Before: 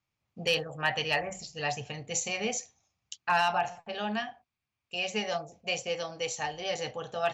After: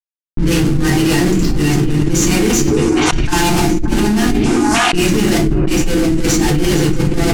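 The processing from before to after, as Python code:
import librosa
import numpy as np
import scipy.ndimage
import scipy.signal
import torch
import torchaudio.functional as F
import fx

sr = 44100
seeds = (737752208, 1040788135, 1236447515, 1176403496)

p1 = fx.schmitt(x, sr, flips_db=-40.0)
p2 = fx.dynamic_eq(p1, sr, hz=7100.0, q=0.72, threshold_db=-48.0, ratio=4.0, max_db=5)
p3 = fx.env_lowpass(p2, sr, base_hz=1200.0, full_db=-30.5)
p4 = fx.transient(p3, sr, attack_db=6, sustain_db=-4)
p5 = fx.low_shelf_res(p4, sr, hz=410.0, db=9.0, q=3.0)
p6 = p5 + fx.echo_stepped(p5, sr, ms=289, hz=390.0, octaves=1.4, feedback_pct=70, wet_db=-5, dry=0)
p7 = fx.room_shoebox(p6, sr, seeds[0], volume_m3=38.0, walls='mixed', distance_m=0.7)
p8 = fx.env_flatten(p7, sr, amount_pct=100)
y = F.gain(torch.from_numpy(p8), -5.5).numpy()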